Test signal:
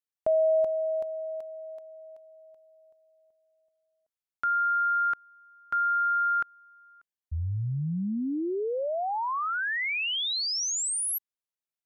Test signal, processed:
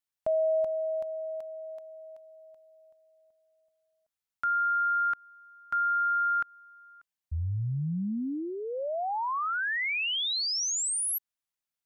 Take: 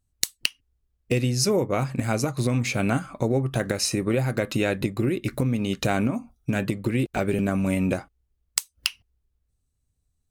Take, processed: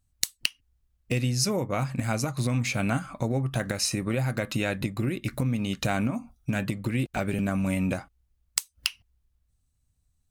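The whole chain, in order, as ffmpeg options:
-filter_complex "[0:a]equalizer=f=400:t=o:w=0.8:g=-7.5,asplit=2[a][b];[b]acompressor=threshold=-37dB:ratio=6:attack=0.12:release=200:knee=6:detection=peak,volume=-2.5dB[c];[a][c]amix=inputs=2:normalize=0,volume=-2.5dB"

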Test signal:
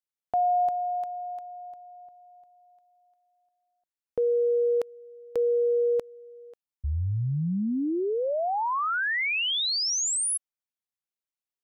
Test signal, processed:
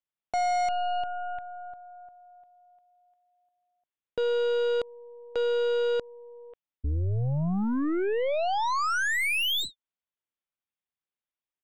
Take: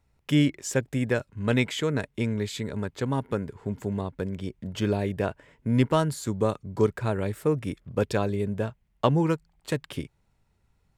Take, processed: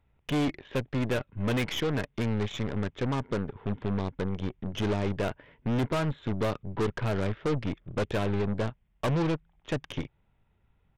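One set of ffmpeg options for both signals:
-af "aresample=8000,asoftclip=type=hard:threshold=-24dB,aresample=44100,aeval=exprs='0.1*(cos(1*acos(clip(val(0)/0.1,-1,1)))-cos(1*PI/2))+0.0126*(cos(8*acos(clip(val(0)/0.1,-1,1)))-cos(8*PI/2))':c=same"

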